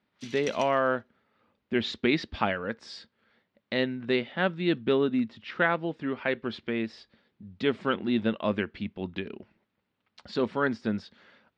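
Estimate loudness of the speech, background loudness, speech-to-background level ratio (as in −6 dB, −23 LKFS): −29.0 LKFS, −44.5 LKFS, 15.5 dB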